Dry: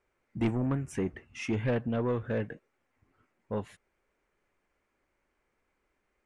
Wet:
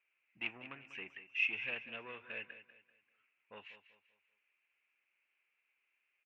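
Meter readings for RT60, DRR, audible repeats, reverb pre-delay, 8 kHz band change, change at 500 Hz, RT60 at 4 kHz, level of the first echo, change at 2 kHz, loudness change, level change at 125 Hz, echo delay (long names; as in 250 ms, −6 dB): no reverb audible, no reverb audible, 3, no reverb audible, below −20 dB, −20.5 dB, no reverb audible, −13.0 dB, +4.0 dB, −7.0 dB, −32.0 dB, 194 ms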